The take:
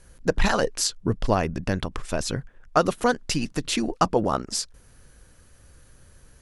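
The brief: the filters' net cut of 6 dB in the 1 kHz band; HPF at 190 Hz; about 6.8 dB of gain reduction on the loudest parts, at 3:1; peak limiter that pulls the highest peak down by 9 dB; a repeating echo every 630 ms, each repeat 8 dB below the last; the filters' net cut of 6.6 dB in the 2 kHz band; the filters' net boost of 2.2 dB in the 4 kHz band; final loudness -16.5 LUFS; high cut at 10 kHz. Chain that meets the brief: high-pass 190 Hz; low-pass 10 kHz; peaking EQ 1 kHz -6.5 dB; peaking EQ 2 kHz -8 dB; peaking EQ 4 kHz +5 dB; compression 3:1, threshold -27 dBFS; peak limiter -20.5 dBFS; feedback delay 630 ms, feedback 40%, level -8 dB; trim +17.5 dB

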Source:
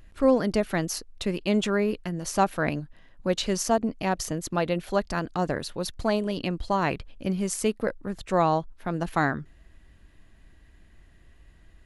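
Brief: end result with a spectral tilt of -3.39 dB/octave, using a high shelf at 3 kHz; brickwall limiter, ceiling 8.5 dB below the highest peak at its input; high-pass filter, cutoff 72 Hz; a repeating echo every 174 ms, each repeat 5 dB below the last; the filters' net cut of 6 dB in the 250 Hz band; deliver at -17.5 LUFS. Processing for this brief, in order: high-pass 72 Hz; peaking EQ 250 Hz -8.5 dB; treble shelf 3 kHz +4.5 dB; peak limiter -18 dBFS; feedback delay 174 ms, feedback 56%, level -5 dB; trim +12 dB

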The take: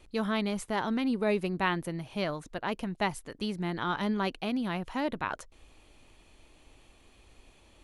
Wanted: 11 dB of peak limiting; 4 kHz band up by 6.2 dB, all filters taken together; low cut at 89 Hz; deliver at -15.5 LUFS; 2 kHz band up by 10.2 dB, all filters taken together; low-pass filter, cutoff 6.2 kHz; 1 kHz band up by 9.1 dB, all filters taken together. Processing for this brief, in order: high-pass 89 Hz; low-pass 6.2 kHz; peaking EQ 1 kHz +8.5 dB; peaking EQ 2 kHz +9 dB; peaking EQ 4 kHz +4 dB; trim +13.5 dB; peak limiter -2 dBFS

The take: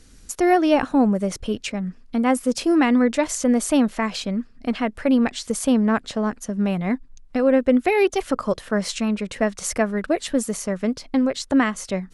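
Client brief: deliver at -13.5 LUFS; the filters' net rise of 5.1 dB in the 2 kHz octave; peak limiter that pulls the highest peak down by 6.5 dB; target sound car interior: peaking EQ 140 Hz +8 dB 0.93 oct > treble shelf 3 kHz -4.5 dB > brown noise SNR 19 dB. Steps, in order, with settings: peaking EQ 2 kHz +7.5 dB; peak limiter -11 dBFS; peaking EQ 140 Hz +8 dB 0.93 oct; treble shelf 3 kHz -4.5 dB; brown noise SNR 19 dB; trim +8 dB

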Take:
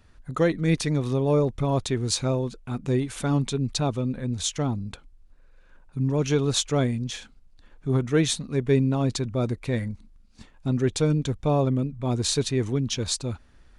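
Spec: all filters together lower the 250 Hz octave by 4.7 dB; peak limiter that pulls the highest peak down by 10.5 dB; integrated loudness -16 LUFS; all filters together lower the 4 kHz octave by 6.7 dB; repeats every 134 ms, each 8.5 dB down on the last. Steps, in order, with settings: peaking EQ 250 Hz -6.5 dB; peaking EQ 4 kHz -8 dB; peak limiter -23 dBFS; feedback delay 134 ms, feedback 38%, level -8.5 dB; trim +16 dB

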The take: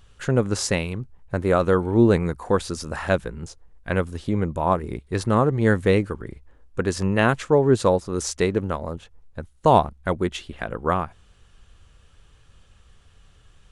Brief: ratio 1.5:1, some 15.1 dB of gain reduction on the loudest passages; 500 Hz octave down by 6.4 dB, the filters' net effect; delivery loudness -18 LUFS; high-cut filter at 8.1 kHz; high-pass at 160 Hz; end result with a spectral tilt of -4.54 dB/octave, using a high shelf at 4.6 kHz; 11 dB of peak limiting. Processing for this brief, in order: high-pass 160 Hz; low-pass 8.1 kHz; peaking EQ 500 Hz -8 dB; treble shelf 4.6 kHz +3.5 dB; compression 1.5:1, threshold -58 dBFS; trim +25.5 dB; peak limiter -4 dBFS

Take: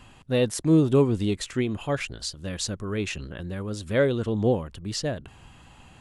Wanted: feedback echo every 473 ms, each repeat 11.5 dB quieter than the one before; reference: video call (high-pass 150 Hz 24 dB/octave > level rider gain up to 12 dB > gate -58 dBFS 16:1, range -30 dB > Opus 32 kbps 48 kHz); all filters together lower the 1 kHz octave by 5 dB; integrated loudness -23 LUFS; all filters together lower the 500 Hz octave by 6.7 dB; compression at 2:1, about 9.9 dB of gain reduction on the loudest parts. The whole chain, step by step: peaking EQ 500 Hz -7.5 dB; peaking EQ 1 kHz -4 dB; compression 2:1, threshold -35 dBFS; high-pass 150 Hz 24 dB/octave; feedback delay 473 ms, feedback 27%, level -11.5 dB; level rider gain up to 12 dB; gate -58 dBFS 16:1, range -30 dB; trim +14 dB; Opus 32 kbps 48 kHz

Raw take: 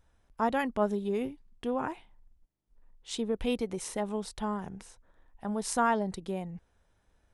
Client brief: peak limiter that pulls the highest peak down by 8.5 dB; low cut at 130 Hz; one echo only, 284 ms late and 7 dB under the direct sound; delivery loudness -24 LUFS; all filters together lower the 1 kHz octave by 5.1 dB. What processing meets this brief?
high-pass 130 Hz; peaking EQ 1 kHz -6.5 dB; peak limiter -24 dBFS; delay 284 ms -7 dB; trim +11.5 dB

